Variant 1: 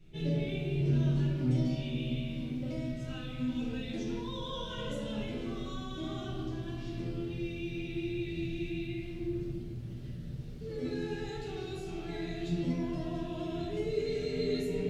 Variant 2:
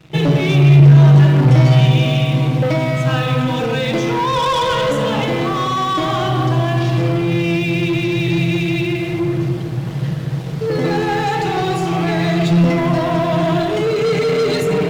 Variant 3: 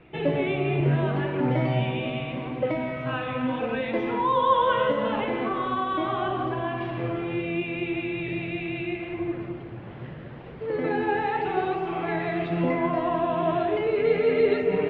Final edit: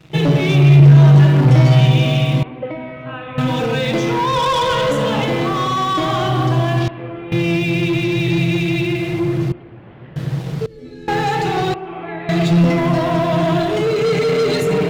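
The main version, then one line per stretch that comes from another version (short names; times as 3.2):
2
2.43–3.38 from 3
6.88–7.32 from 3
9.52–10.16 from 3
10.66–11.08 from 1
11.74–12.29 from 3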